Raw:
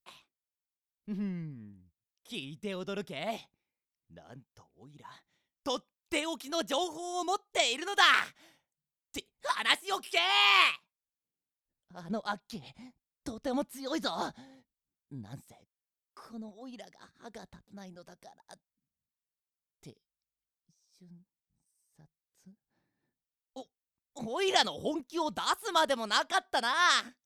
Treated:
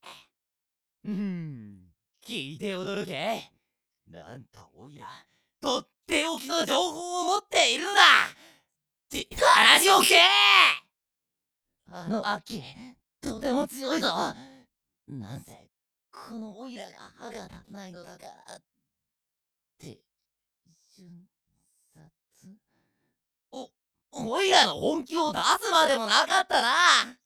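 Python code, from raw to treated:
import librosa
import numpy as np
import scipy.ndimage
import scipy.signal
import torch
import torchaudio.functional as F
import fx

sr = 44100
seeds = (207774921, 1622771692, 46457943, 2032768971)

y = fx.spec_dilate(x, sr, span_ms=60)
y = fx.env_flatten(y, sr, amount_pct=70, at=(9.31, 10.26), fade=0.02)
y = y * 10.0 ** (2.5 / 20.0)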